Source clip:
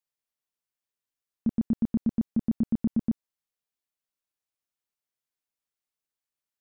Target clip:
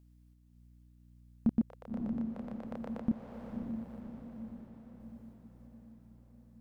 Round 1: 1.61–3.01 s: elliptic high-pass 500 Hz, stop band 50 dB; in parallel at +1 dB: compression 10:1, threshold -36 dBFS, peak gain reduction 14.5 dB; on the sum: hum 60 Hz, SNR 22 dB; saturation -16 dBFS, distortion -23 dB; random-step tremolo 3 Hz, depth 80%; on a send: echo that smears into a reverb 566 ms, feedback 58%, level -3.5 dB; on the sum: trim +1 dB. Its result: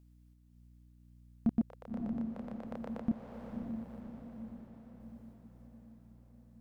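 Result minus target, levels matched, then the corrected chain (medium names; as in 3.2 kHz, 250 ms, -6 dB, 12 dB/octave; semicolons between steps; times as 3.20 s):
saturation: distortion +13 dB
1.61–3.01 s: elliptic high-pass 500 Hz, stop band 50 dB; in parallel at +1 dB: compression 10:1, threshold -36 dBFS, peak gain reduction 14.5 dB; on the sum: hum 60 Hz, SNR 22 dB; saturation -9 dBFS, distortion -35 dB; random-step tremolo 3 Hz, depth 80%; on a send: echo that smears into a reverb 566 ms, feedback 58%, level -3.5 dB; on the sum: trim +1 dB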